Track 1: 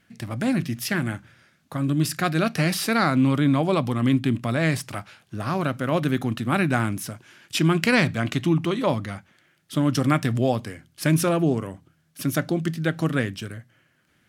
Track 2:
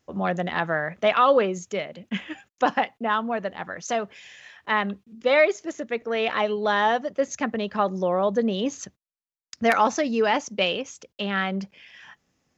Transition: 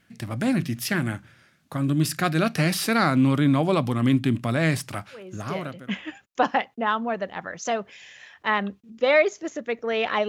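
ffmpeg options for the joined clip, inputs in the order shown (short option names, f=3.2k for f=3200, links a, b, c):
-filter_complex "[0:a]apad=whole_dur=10.28,atrim=end=10.28,atrim=end=5.96,asetpts=PTS-STARTPTS[a];[1:a]atrim=start=1.33:end=6.51,asetpts=PTS-STARTPTS[b];[a][b]acrossfade=d=0.86:c1=tri:c2=tri"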